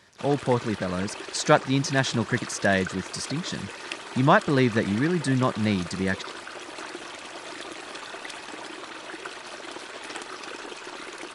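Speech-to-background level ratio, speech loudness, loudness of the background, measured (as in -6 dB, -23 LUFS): 12.5 dB, -25.0 LUFS, -37.5 LUFS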